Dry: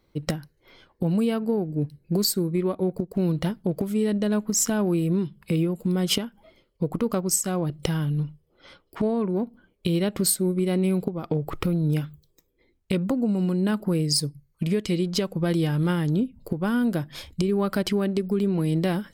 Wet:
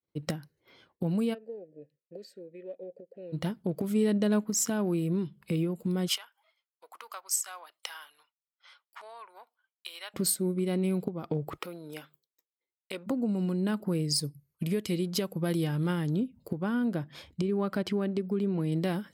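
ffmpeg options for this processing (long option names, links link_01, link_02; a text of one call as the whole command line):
ffmpeg -i in.wav -filter_complex "[0:a]asplit=3[link_01][link_02][link_03];[link_01]afade=type=out:start_time=1.33:duration=0.02[link_04];[link_02]asplit=3[link_05][link_06][link_07];[link_05]bandpass=frequency=530:width_type=q:width=8,volume=0dB[link_08];[link_06]bandpass=frequency=1840:width_type=q:width=8,volume=-6dB[link_09];[link_07]bandpass=frequency=2480:width_type=q:width=8,volume=-9dB[link_10];[link_08][link_09][link_10]amix=inputs=3:normalize=0,afade=type=in:start_time=1.33:duration=0.02,afade=type=out:start_time=3.32:duration=0.02[link_11];[link_03]afade=type=in:start_time=3.32:duration=0.02[link_12];[link_04][link_11][link_12]amix=inputs=3:normalize=0,asettb=1/sr,asplit=3[link_13][link_14][link_15];[link_13]atrim=end=6.084[link_16];[link_14]atrim=start=6.08:end=10.14,asetpts=PTS-STARTPTS,afade=type=in:duration=0.004:curve=qsin,afade=type=out:start_time=4.056:duration=0.004:curve=qsin,highpass=frequency=900:width=0.5412,highpass=frequency=900:width=1.3066[link_17];[link_15]atrim=start=10.136[link_18];[link_16][link_17]acrossfade=duration=0.004:curve1=hsin:curve2=qsin[link_19];[link_19][link_18]acrossfade=duration=0.004:curve1=qsin:curve2=hsin,asplit=3[link_20][link_21][link_22];[link_20]afade=type=out:start_time=11.56:duration=0.02[link_23];[link_21]highpass=530,afade=type=in:start_time=11.56:duration=0.02,afade=type=out:start_time=13.06:duration=0.02[link_24];[link_22]afade=type=in:start_time=13.06:duration=0.02[link_25];[link_23][link_24][link_25]amix=inputs=3:normalize=0,asettb=1/sr,asplit=3[link_26][link_27][link_28];[link_26]atrim=end=14.244[link_29];[link_27]atrim=start=14.24:end=15.64,asetpts=PTS-STARTPTS,afade=type=in:duration=0.004:curve=qsin,afade=type=out:start_time=1.396:duration=0.004:curve=qsin,equalizer=frequency=12000:width_type=o:width=0.52:gain=11[link_30];[link_28]atrim=start=15.636[link_31];[link_29][link_30]acrossfade=duration=0.004:curve1=hsin:curve2=qsin[link_32];[link_32][link_31]acrossfade=duration=0.004:curve1=qsin:curve2=hsin,asettb=1/sr,asplit=3[link_33][link_34][link_35];[link_33]atrim=end=16.634[link_36];[link_34]atrim=start=16.63:end=18.72,asetpts=PTS-STARTPTS,afade=type=in:duration=0.004:curve=qsin,afade=type=out:start_time=2.086:duration=0.004:curve=qsin,highshelf=frequency=4800:gain=-9.5[link_37];[link_35]atrim=start=18.716[link_38];[link_36][link_37]acrossfade=duration=0.004:curve1=hsin:curve2=qsin[link_39];[link_39][link_38]acrossfade=duration=0.004:curve1=qsin:curve2=hsin,asplit=3[link_40][link_41][link_42];[link_40]atrim=end=3.842[link_43];[link_41]atrim=start=3.838:end=4.442,asetpts=PTS-STARTPTS,volume=3.5dB[link_44];[link_42]atrim=start=4.438[link_45];[link_43][link_44]acrossfade=duration=0.004:curve1=hsin:curve2=hsin[link_46];[link_46][link_45]acrossfade=duration=0.004:curve1=hsin:curve2=hsin,agate=range=-33dB:threshold=-54dB:ratio=3:detection=peak,highpass=93,volume=-5.5dB" out.wav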